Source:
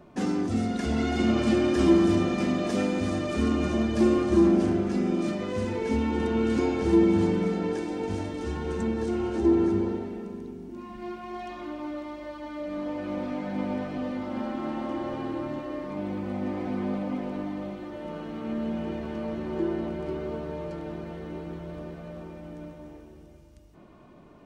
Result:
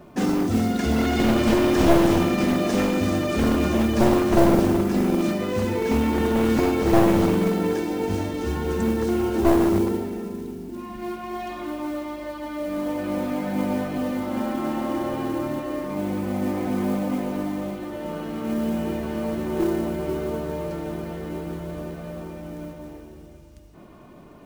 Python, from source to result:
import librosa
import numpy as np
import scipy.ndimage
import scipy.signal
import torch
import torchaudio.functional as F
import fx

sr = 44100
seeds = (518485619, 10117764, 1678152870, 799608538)

y = np.minimum(x, 2.0 * 10.0 ** (-21.5 / 20.0) - x)
y = fx.mod_noise(y, sr, seeds[0], snr_db=24)
y = F.gain(torch.from_numpy(y), 5.5).numpy()